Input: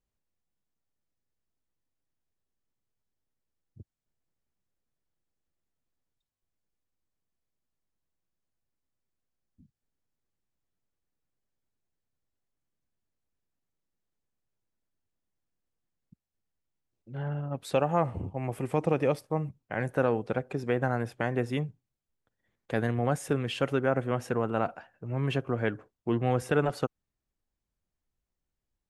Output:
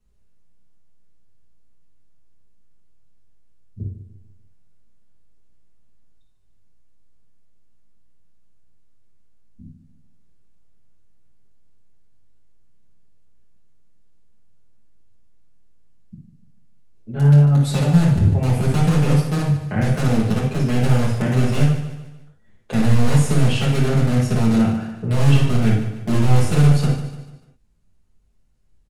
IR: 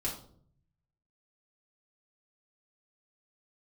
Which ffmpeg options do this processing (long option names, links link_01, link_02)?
-filter_complex "[0:a]lowshelf=frequency=450:gain=5,acrossover=split=260|3000[link_01][link_02][link_03];[link_02]acompressor=threshold=-38dB:ratio=8[link_04];[link_01][link_04][link_03]amix=inputs=3:normalize=0,asplit=2[link_05][link_06];[link_06]aeval=exprs='(mod(15*val(0)+1,2)-1)/15':channel_layout=same,volume=-6dB[link_07];[link_05][link_07]amix=inputs=2:normalize=0,aecho=1:1:147|294|441|588:0.282|0.121|0.0521|0.0224[link_08];[1:a]atrim=start_sample=2205,atrim=end_sample=3087,asetrate=24255,aresample=44100[link_09];[link_08][link_09]afir=irnorm=-1:irlink=0,volume=1.5dB"